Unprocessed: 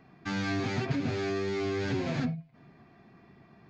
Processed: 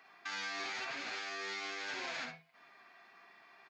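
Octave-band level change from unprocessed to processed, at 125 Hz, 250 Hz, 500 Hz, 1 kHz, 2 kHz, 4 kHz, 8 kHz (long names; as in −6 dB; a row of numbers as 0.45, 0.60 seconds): −33.0 dB, −23.0 dB, −16.5 dB, −4.5 dB, −1.5 dB, 0.0 dB, can't be measured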